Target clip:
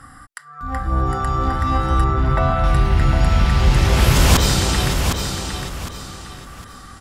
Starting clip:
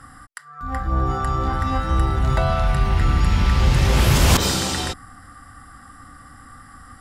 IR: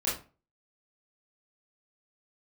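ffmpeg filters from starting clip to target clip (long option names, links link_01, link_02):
-filter_complex "[0:a]asettb=1/sr,asplit=3[link_01][link_02][link_03];[link_01]atrim=end=2.044[link_04];[link_02]atrim=start=2.04:end=2.64,asetpts=PTS-STARTPTS,afade=type=in:duration=0.004:curve=qsin,afade=type=out:start_time=0.596:duration=0.004:curve=qsin,lowpass=2600[link_05];[link_03]atrim=start=2.636[link_06];[link_04][link_05]acrossfade=duration=0.004:curve1=hsin:curve2=qsin[link_07];[link_07][link_06]acrossfade=duration=0.004:curve1=qsin:curve2=hsin,aecho=1:1:758|1516|2274|3032:0.501|0.16|0.0513|0.0164,volume=1.5dB"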